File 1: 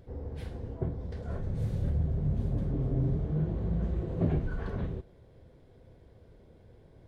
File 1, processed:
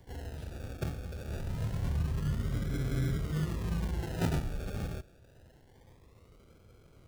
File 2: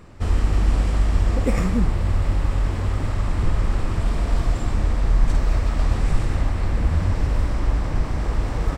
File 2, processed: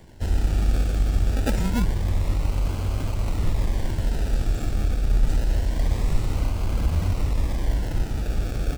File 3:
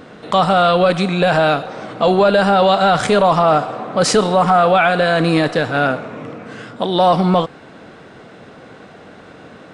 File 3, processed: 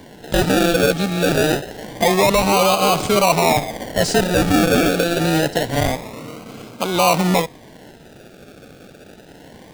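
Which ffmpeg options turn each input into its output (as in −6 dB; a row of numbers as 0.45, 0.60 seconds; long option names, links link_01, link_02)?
-filter_complex "[0:a]acrossover=split=130|2600[link_01][link_02][link_03];[link_02]acrusher=samples=34:mix=1:aa=0.000001:lfo=1:lforange=20.4:lforate=0.26[link_04];[link_03]asoftclip=type=hard:threshold=-18dB[link_05];[link_01][link_04][link_05]amix=inputs=3:normalize=0,volume=-2.5dB"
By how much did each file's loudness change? −2.5, −2.5, −2.5 LU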